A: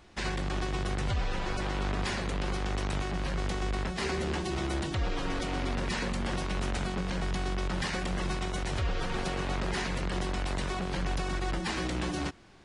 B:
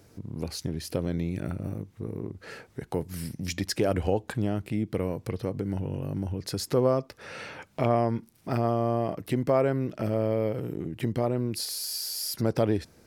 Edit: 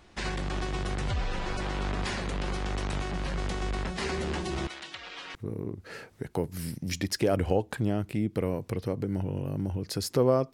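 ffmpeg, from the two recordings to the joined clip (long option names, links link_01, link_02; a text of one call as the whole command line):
ffmpeg -i cue0.wav -i cue1.wav -filter_complex "[0:a]asettb=1/sr,asplit=3[link_01][link_02][link_03];[link_01]atrim=end=4.674[link_04];[link_02]atrim=start=4.67:end=5.35,asetpts=PTS-STARTPTS,afade=type=in:duration=0.004:curve=qsin,afade=type=out:start_time=0.676:duration=0.004:curve=qsin,bandpass=frequency=2900:width_type=q:width=0.86:csg=0[link_05];[link_03]atrim=start=5.346[link_06];[link_04][link_05]acrossfade=duration=0.004:curve1=hsin:curve2=qsin[link_07];[link_07][link_06]acrossfade=duration=0.004:curve1=qsin:curve2=hsin,apad=whole_dur=10.53,atrim=end=10.53,atrim=end=5.352[link_08];[1:a]atrim=start=1.918:end=7.1[link_09];[link_08][link_09]acrossfade=duration=0.004:curve1=hsin:curve2=hsin" out.wav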